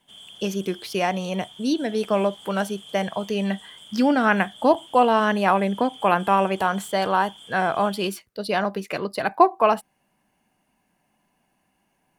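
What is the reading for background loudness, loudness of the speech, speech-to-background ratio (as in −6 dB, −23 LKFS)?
−43.0 LKFS, −23.0 LKFS, 20.0 dB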